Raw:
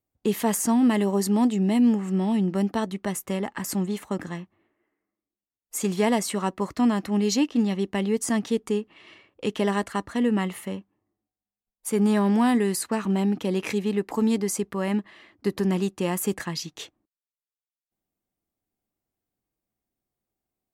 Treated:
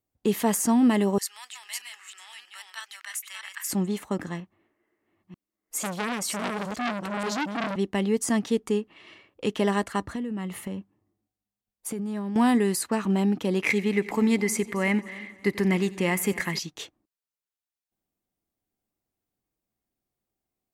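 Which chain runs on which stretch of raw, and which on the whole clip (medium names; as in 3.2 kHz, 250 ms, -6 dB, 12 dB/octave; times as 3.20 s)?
1.18–3.71 s: chunks repeated in reverse 319 ms, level -3.5 dB + high-pass 1.5 kHz 24 dB/octave
4.40–7.76 s: chunks repeated in reverse 472 ms, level -4 dB + transformer saturation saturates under 2.6 kHz
10.01–12.36 s: high-pass 56 Hz + bass shelf 230 Hz +9 dB + compression 12:1, threshold -28 dBFS
13.62–16.59 s: peaking EQ 2.1 kHz +15 dB 0.33 oct + multi-head delay 89 ms, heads first and third, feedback 43%, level -20 dB
whole clip: none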